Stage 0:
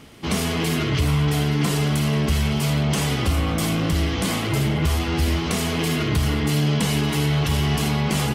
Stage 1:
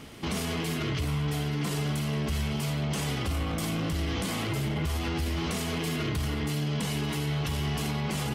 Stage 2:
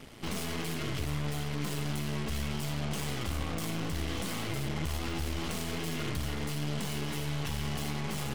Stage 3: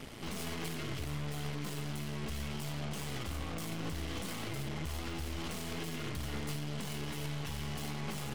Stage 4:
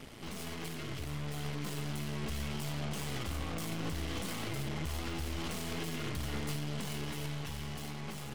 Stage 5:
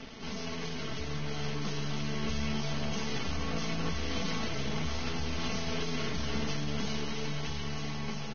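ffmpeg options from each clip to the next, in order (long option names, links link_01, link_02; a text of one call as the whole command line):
ffmpeg -i in.wav -af "alimiter=limit=-22.5dB:level=0:latency=1:release=51" out.wav
ffmpeg -i in.wav -af "aeval=exprs='0.0794*(cos(1*acos(clip(val(0)/0.0794,-1,1)))-cos(1*PI/2))+0.02*(cos(4*acos(clip(val(0)/0.0794,-1,1)))-cos(4*PI/2))+0.0178*(cos(6*acos(clip(val(0)/0.0794,-1,1)))-cos(6*PI/2))+0.02*(cos(8*acos(clip(val(0)/0.0794,-1,1)))-cos(8*PI/2))':channel_layout=same,volume=-5.5dB" out.wav
ffmpeg -i in.wav -af "alimiter=level_in=7.5dB:limit=-24dB:level=0:latency=1:release=29,volume=-7.5dB,volume=2.5dB" out.wav
ffmpeg -i in.wav -af "dynaudnorm=framelen=290:gausssize=9:maxgain=4dB,volume=-2.5dB" out.wav
ffmpeg -i in.wav -af "aecho=1:1:4.5:0.52,aecho=1:1:478|956|1434:0.355|0.0852|0.0204,volume=2.5dB" -ar 16000 -c:a libvorbis -b:a 16k out.ogg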